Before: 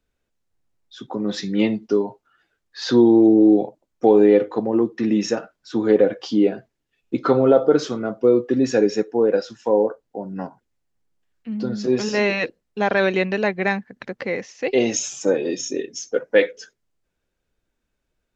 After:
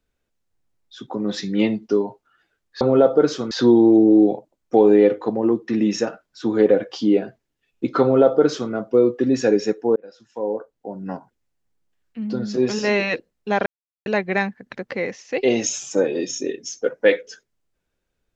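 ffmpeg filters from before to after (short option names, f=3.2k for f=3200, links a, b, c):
-filter_complex "[0:a]asplit=6[a][b][c][d][e][f];[a]atrim=end=2.812[g];[b]atrim=start=7.318:end=8.022[h];[c]atrim=start=2.808:end=9.26,asetpts=PTS-STARTPTS,afade=t=out:st=6.448:d=0.004:c=hsin[i];[d]atrim=start=9.26:end=12.96,asetpts=PTS-STARTPTS,afade=t=in:d=1.16,afade=t=out:st=3.696:d=0.004:c=hsin[j];[e]atrim=start=12.96:end=13.36,asetpts=PTS-STARTPTS,volume=0[k];[f]atrim=start=13.36,asetpts=PTS-STARTPTS,afade=t=in:d=0.004:c=hsin[l];[g][h]acrossfade=d=0.004:c1=hsin:c2=hsin[m];[i][j][k][l]concat=n=4:v=0:a=1[n];[m][n]acrossfade=d=0.004:c1=hsin:c2=hsin"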